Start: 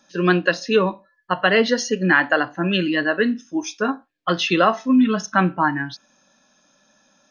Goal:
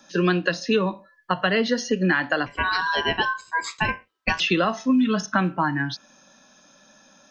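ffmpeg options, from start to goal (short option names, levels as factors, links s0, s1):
-filter_complex "[0:a]asettb=1/sr,asplit=3[s0][s1][s2];[s0]atrim=end=2.464[s3];[s1]atrim=start=2.46:end=4.4,asetpts=PTS-STARTPTS,afade=t=in:d=0.004:c=qsin,afade=t=out:st=1.936:d=0.004:c=qsin,aeval=exprs='val(0)*sin(2*PI*1300*n/s)':c=same[s4];[s2]atrim=start=4.396[s5];[s3][s4]acrossfade=d=0.004:c1=hsin:c2=qsin[s6];[s6][s5]acrossfade=d=0.004:c1=qsin:c2=hsin,acrossover=split=180|3800[s7][s8][s9];[s7]acompressor=threshold=0.02:ratio=4[s10];[s8]acompressor=threshold=0.0447:ratio=4[s11];[s9]acompressor=threshold=0.00891:ratio=4[s12];[s10][s11][s12]amix=inputs=3:normalize=0,volume=1.88"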